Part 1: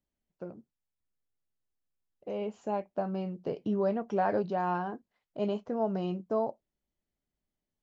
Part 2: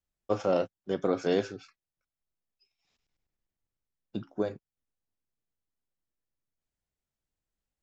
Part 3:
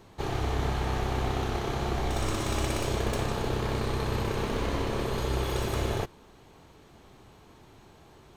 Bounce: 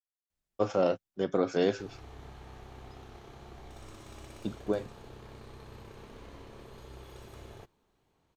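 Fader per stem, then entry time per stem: off, 0.0 dB, -19.5 dB; off, 0.30 s, 1.60 s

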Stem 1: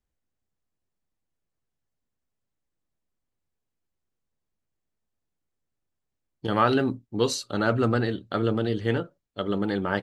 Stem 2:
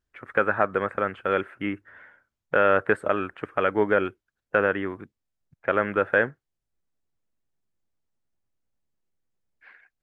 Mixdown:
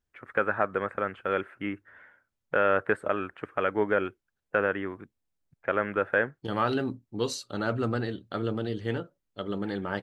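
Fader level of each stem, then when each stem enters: -5.5, -4.0 dB; 0.00, 0.00 s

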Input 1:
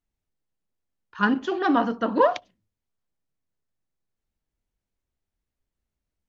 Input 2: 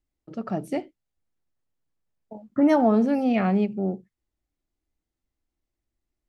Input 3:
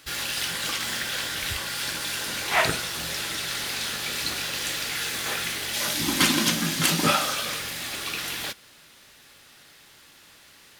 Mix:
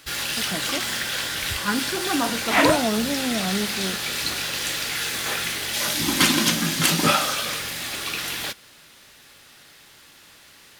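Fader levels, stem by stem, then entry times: -3.5, -4.5, +2.5 dB; 0.45, 0.00, 0.00 s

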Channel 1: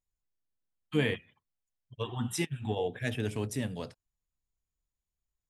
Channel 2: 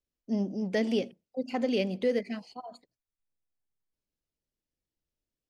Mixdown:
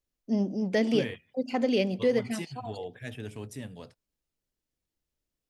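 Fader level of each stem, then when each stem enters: -6.5, +2.5 dB; 0.00, 0.00 s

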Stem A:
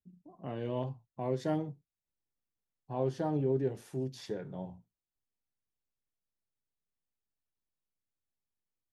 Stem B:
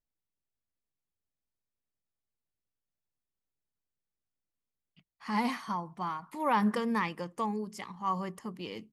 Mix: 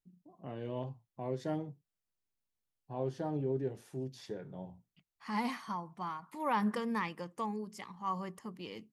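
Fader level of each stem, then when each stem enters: -4.0, -4.5 dB; 0.00, 0.00 s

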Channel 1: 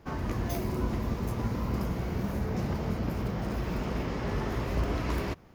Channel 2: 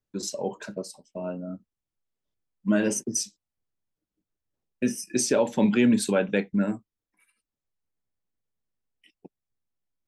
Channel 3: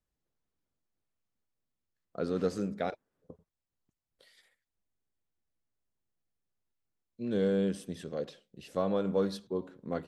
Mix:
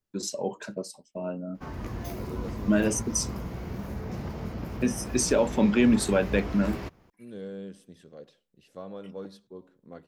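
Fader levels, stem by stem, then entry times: -4.0, -0.5, -10.5 dB; 1.55, 0.00, 0.00 s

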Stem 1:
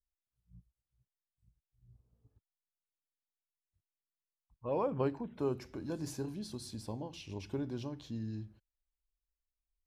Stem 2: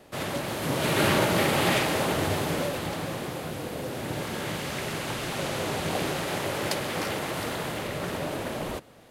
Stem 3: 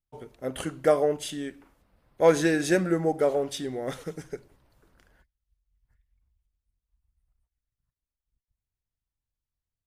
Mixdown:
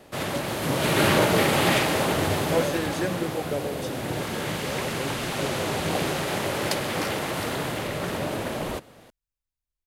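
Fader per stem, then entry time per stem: -2.0, +2.5, -6.5 dB; 0.00, 0.00, 0.30 s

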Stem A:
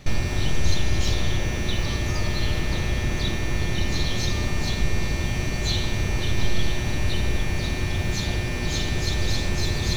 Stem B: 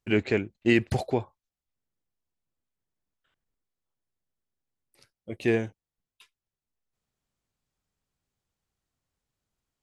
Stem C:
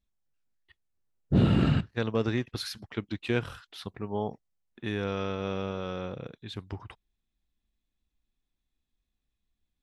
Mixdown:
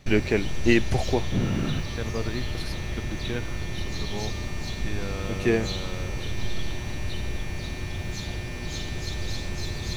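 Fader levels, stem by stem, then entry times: -7.0, +1.5, -4.0 dB; 0.00, 0.00, 0.00 s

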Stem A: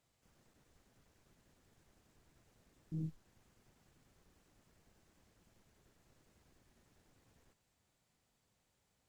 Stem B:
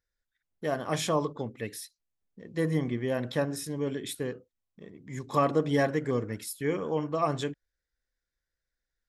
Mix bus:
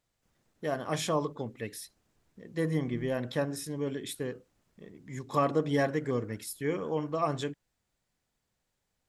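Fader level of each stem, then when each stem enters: -2.5, -2.0 dB; 0.00, 0.00 s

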